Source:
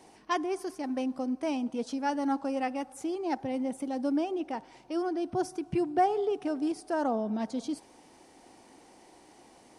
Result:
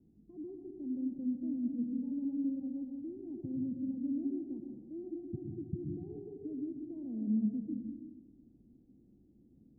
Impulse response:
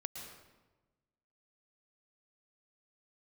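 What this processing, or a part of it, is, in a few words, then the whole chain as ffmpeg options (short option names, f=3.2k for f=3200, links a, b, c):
club heard from the street: -filter_complex "[0:a]alimiter=level_in=1dB:limit=-24dB:level=0:latency=1:release=37,volume=-1dB,lowpass=f=240:w=0.5412,lowpass=f=240:w=1.3066[a];[1:a]atrim=start_sample=2205[b];[a][b]afir=irnorm=-1:irlink=0,volume=4.5dB"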